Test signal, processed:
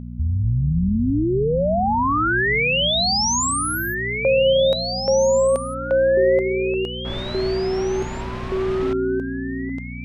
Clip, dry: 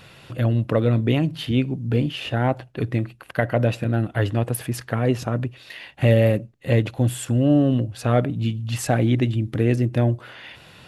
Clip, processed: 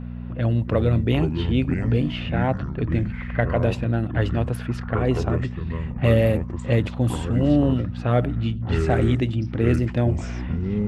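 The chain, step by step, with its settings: level-controlled noise filter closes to 1.3 kHz, open at -14 dBFS; ever faster or slower copies 163 ms, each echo -6 st, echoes 3, each echo -6 dB; mains buzz 60 Hz, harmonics 4, -31 dBFS -2 dB/octave; trim -1.5 dB

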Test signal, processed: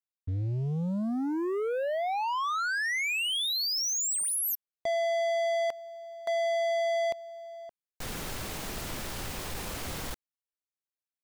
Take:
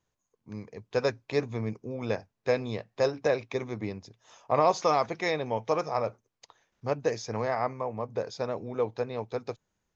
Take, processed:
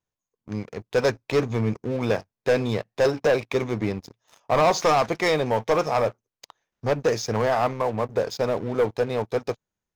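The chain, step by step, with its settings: waveshaping leveller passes 3; trim -2 dB

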